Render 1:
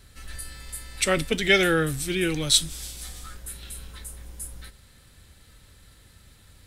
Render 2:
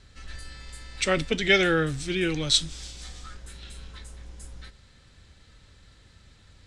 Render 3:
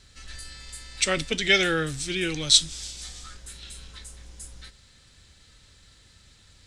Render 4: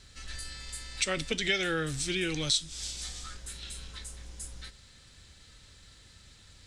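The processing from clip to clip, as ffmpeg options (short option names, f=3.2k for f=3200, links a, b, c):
-af "lowpass=f=7k:w=0.5412,lowpass=f=7k:w=1.3066,volume=-1dB"
-af "highshelf=f=3.2k:g=11.5,volume=-3dB"
-af "acompressor=threshold=-28dB:ratio=3"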